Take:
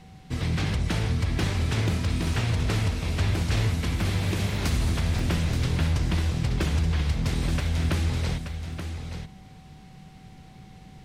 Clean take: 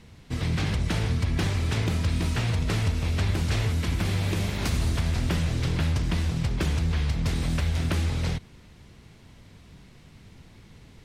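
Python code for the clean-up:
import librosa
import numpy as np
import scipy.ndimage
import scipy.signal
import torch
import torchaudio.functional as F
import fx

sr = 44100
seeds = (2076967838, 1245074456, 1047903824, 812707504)

y = fx.notch(x, sr, hz=760.0, q=30.0)
y = fx.fix_interpolate(y, sr, at_s=(5.19,), length_ms=2.8)
y = fx.noise_reduce(y, sr, print_start_s=10.08, print_end_s=10.58, reduce_db=6.0)
y = fx.fix_echo_inverse(y, sr, delay_ms=878, level_db=-8.5)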